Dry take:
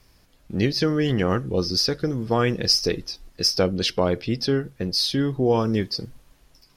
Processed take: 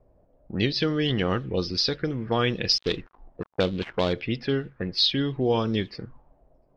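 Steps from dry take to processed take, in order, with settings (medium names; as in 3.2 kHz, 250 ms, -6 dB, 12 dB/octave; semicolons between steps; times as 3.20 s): 2.78–4.13 s: dead-time distortion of 0.13 ms; touch-sensitive low-pass 590–3700 Hz up, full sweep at -19 dBFS; trim -3.5 dB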